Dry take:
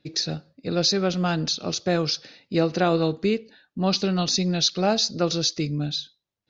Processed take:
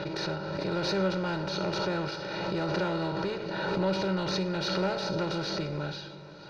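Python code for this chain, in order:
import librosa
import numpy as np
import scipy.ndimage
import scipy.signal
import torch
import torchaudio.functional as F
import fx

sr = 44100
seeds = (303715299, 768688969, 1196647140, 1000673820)

p1 = fx.bin_compress(x, sr, power=0.4)
p2 = scipy.signal.sosfilt(scipy.signal.butter(2, 2000.0, 'lowpass', fs=sr, output='sos'), p1)
p3 = fx.peak_eq(p2, sr, hz=480.0, db=-14.5, octaves=0.25)
p4 = p3 + 0.85 * np.pad(p3, (int(2.1 * sr / 1000.0), 0))[:len(p3)]
p5 = 10.0 ** (-13.5 / 20.0) * np.tanh(p4 / 10.0 ** (-13.5 / 20.0))
p6 = fx.comb_fb(p5, sr, f0_hz=190.0, decay_s=0.39, harmonics='odd', damping=0.0, mix_pct=70)
p7 = p6 + fx.echo_diffused(p6, sr, ms=505, feedback_pct=48, wet_db=-15.5, dry=0)
y = fx.pre_swell(p7, sr, db_per_s=24.0)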